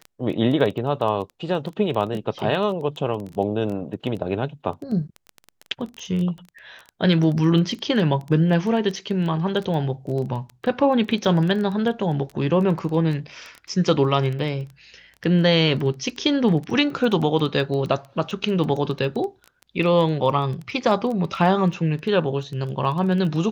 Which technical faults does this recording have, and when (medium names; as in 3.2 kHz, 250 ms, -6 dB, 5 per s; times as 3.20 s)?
crackle 10 per s -27 dBFS